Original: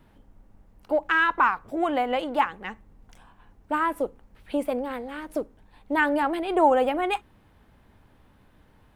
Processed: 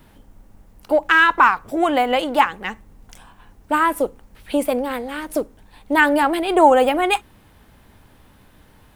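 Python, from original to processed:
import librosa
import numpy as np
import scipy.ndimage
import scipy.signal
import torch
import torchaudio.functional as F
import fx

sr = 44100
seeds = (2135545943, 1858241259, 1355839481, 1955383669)

y = fx.high_shelf(x, sr, hz=3900.0, db=10.0)
y = y * librosa.db_to_amplitude(6.5)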